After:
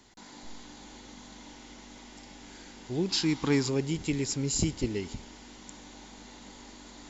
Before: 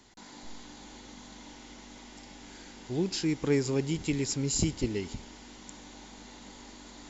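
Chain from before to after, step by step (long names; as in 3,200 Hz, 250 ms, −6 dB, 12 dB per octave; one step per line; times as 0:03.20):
0:03.09–0:03.69: octave-band graphic EQ 250/500/1,000/4,000 Hz +4/−6/+9/+8 dB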